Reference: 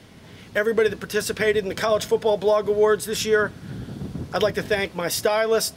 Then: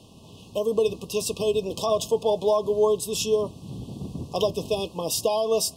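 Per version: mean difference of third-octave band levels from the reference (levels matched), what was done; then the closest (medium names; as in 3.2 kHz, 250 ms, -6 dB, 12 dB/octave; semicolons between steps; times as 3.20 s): 3.5 dB: brick-wall FIR band-stop 1.2–2.5 kHz; peaking EQ 7.8 kHz +3.5 dB 0.81 oct; trim -2.5 dB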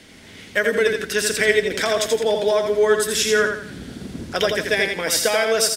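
5.0 dB: ten-band graphic EQ 125 Hz -9 dB, 250 Hz +3 dB, 1 kHz -4 dB, 2 kHz +6 dB, 4 kHz +3 dB, 8 kHz +7 dB; on a send: feedback delay 84 ms, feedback 35%, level -5 dB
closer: first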